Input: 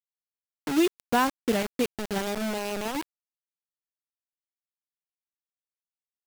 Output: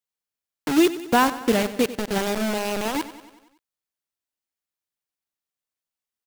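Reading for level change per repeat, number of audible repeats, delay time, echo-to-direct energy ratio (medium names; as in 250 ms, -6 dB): -4.5 dB, 5, 94 ms, -13.0 dB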